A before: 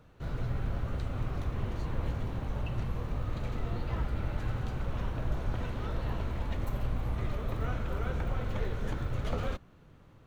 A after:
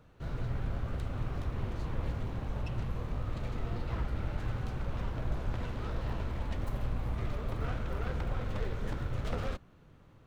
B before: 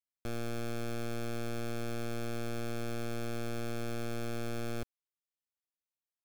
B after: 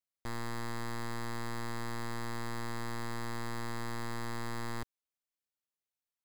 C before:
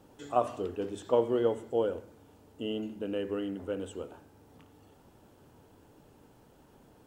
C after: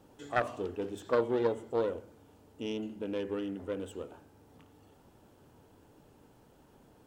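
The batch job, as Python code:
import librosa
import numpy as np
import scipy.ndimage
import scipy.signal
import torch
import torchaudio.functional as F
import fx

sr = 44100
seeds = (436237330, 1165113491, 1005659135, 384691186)

y = fx.self_delay(x, sr, depth_ms=0.33)
y = y * 10.0 ** (-1.5 / 20.0)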